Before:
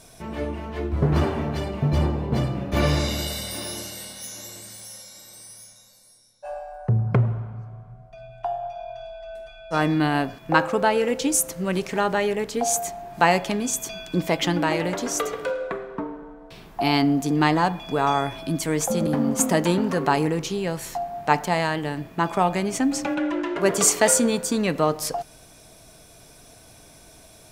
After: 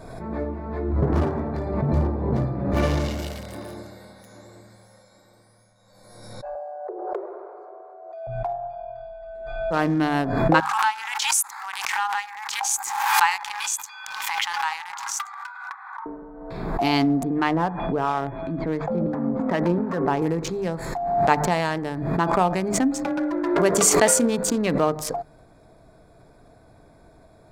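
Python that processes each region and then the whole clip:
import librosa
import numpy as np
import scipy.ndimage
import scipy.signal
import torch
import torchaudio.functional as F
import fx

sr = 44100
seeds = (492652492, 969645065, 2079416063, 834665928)

y = fx.chain(x, sr, fx.cheby1_highpass(hz=340.0, order=8),
    fx.peak_eq(hz=2000.0, db=-11.5, octaves=2.4),
    fx.env_flatten(amount_pct=50), at=(6.55, 8.27))
y = fx.chain(y, sr, fx.brickwall_highpass(low_hz=760.0),
    fx.pre_swell(db_per_s=40.0), at=(10.6, 16.06))
y = fx.chain(y, sr, fx.lowpass(hz=3200.0, slope=24),
    fx.harmonic_tremolo(hz=2.8, depth_pct=50, crossover_hz=790.0), at=(17.23, 20.22))
y = fx.wiener(y, sr, points=15)
y = fx.hum_notches(y, sr, base_hz=50, count=5)
y = fx.pre_swell(y, sr, db_per_s=41.0)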